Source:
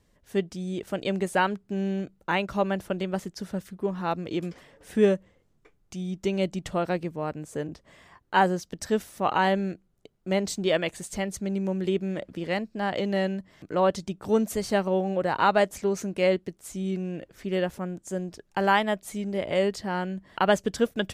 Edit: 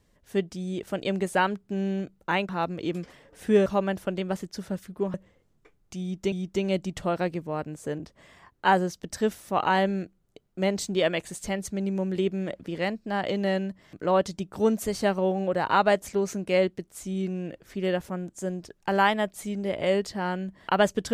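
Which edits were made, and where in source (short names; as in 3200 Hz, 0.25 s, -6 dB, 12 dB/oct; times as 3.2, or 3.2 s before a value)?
3.97–5.14 move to 2.49
6.01–6.32 loop, 2 plays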